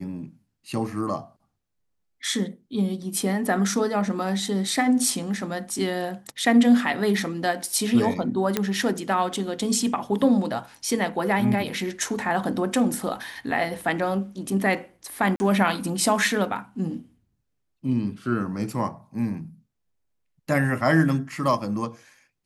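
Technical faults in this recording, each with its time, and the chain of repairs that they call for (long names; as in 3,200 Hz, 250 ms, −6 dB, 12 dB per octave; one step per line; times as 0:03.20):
0:08.57: click −7 dBFS
0:15.36–0:15.40: drop-out 40 ms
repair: click removal
repair the gap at 0:15.36, 40 ms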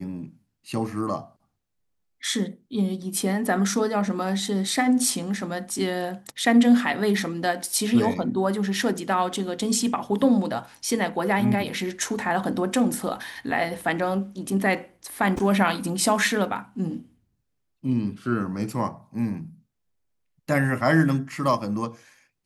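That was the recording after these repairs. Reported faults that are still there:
none of them is left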